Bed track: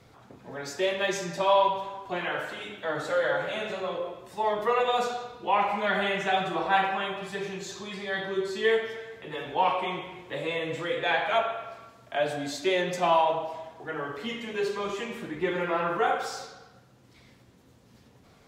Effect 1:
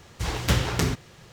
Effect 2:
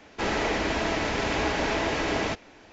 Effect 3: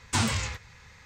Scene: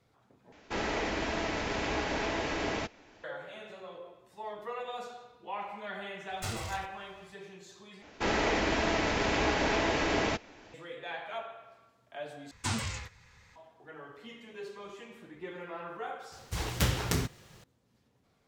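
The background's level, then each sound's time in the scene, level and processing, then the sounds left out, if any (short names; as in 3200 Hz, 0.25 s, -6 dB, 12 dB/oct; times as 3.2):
bed track -14 dB
0.52 replace with 2 -6 dB
6.29 add 3 -10 dB + minimum comb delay 1.5 ms
8.02 replace with 2 -2 dB
12.51 replace with 3 -7 dB
16.32 add 1 -6 dB + high shelf 10000 Hz +8 dB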